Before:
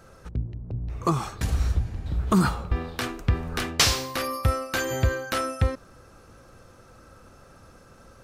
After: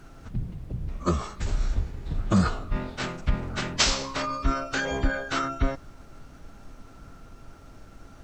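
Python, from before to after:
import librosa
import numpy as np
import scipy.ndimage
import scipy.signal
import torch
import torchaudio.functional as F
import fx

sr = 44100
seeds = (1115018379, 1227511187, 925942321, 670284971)

y = fx.pitch_keep_formants(x, sr, semitones=-11.5)
y = fx.dmg_noise_colour(y, sr, seeds[0], colour='brown', level_db=-45.0)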